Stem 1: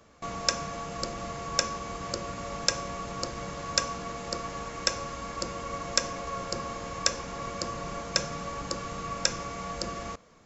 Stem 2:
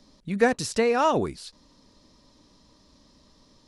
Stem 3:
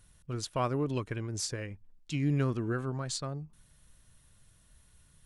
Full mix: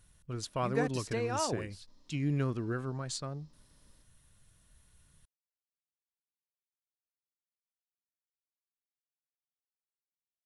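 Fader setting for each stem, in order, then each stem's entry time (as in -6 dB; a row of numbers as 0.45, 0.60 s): off, -12.0 dB, -2.5 dB; off, 0.35 s, 0.00 s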